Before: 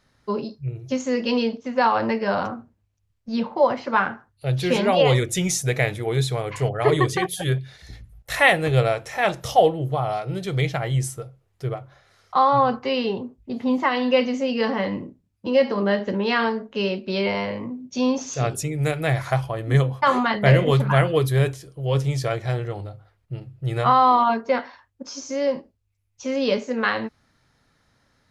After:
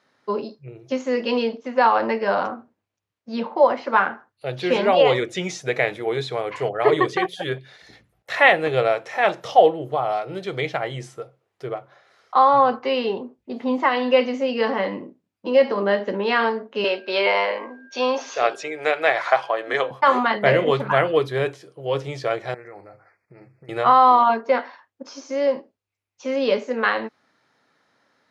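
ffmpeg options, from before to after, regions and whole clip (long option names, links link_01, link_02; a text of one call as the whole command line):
ffmpeg -i in.wav -filter_complex "[0:a]asettb=1/sr,asplit=3[link_01][link_02][link_03];[link_01]atrim=end=16.844[link_04];[link_02]atrim=start=16.84:end=19.91,asetpts=PTS-STARTPTS,afade=type=in:duration=0.004:curve=qsin,afade=type=out:start_time=3.066:duration=0.004:curve=qsin,acontrast=62,highpass=560,lowpass=6000,aeval=exprs='val(0)+0.00355*sin(2*PI*1600*n/s)':channel_layout=same[link_05];[link_03]atrim=start=19.906[link_06];[link_04][link_05]acrossfade=duration=0.004:curve1=hsin:curve2=qsin[link_07];[link_07][link_06]acrossfade=duration=0.004:curve1=qsin:curve2=hsin,asettb=1/sr,asplit=3[link_08][link_09][link_10];[link_08]atrim=end=22.544[link_11];[link_09]atrim=start=22.54:end=23.69,asetpts=PTS-STARTPTS,afade=type=in:duration=0.004:curve=qsin,afade=type=out:start_time=1.146:duration=0.004:curve=qsin,equalizer=frequency=2000:width=1.5:gain=10,acompressor=threshold=-35dB:ratio=12:attack=3.2:release=140:knee=1:detection=peak,asuperstop=centerf=3300:order=12:qfactor=1.8[link_12];[link_10]atrim=start=23.686[link_13];[link_11][link_12]acrossfade=duration=0.004:curve1=hsin:curve2=qsin[link_14];[link_14][link_13]acrossfade=duration=0.004:curve1=qsin:curve2=hsin,acrossover=split=5700[link_15][link_16];[link_16]acompressor=threshold=-49dB:ratio=4:attack=1:release=60[link_17];[link_15][link_17]amix=inputs=2:normalize=0,highpass=310,aemphasis=mode=reproduction:type=50kf,volume=3dB" out.wav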